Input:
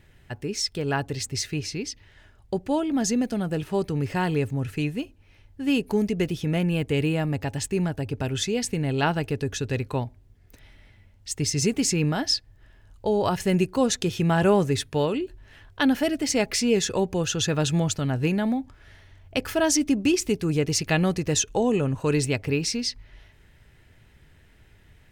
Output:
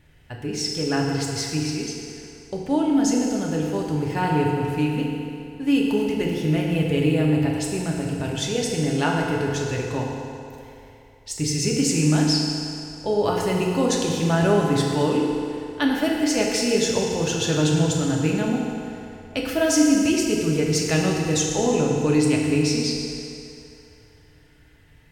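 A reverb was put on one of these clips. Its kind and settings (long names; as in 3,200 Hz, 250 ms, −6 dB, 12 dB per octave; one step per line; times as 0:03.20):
feedback delay network reverb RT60 2.8 s, low-frequency decay 0.75×, high-frequency decay 0.8×, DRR −2 dB
level −2 dB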